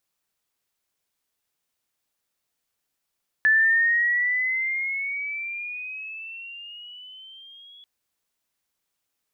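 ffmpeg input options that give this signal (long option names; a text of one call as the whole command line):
ffmpeg -f lavfi -i "aevalsrc='pow(10,(-14.5-31*t/4.39)/20)*sin(2*PI*1740*4.39/(11.5*log(2)/12)*(exp(11.5*log(2)/12*t/4.39)-1))':duration=4.39:sample_rate=44100" out.wav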